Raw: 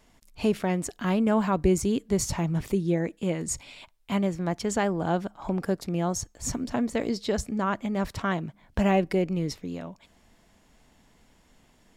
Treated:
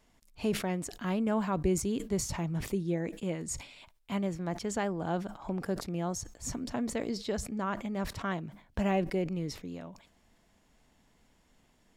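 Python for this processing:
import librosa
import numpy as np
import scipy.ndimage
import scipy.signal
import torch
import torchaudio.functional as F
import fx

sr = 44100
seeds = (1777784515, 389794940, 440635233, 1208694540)

y = fx.sustainer(x, sr, db_per_s=120.0)
y = y * librosa.db_to_amplitude(-6.5)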